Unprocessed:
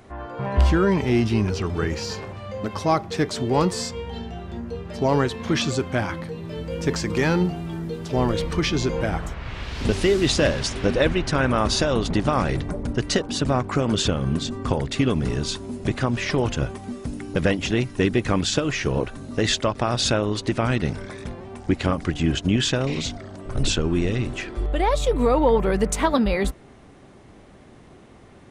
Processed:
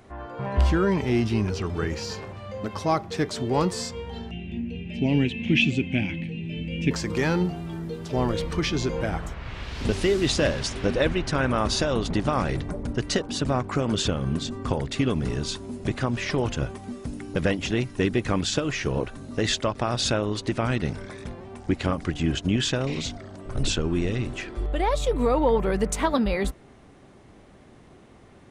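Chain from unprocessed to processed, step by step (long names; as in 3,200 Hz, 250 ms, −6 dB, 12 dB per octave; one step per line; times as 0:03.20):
0:04.31–0:06.91: drawn EQ curve 100 Hz 0 dB, 190 Hz +7 dB, 280 Hz +6 dB, 460 Hz −8 dB, 810 Hz −10 dB, 1,200 Hz −25 dB, 2,600 Hz +15 dB, 4,400 Hz −10 dB, 6,600 Hz −9 dB, 12,000 Hz −15 dB
level −3 dB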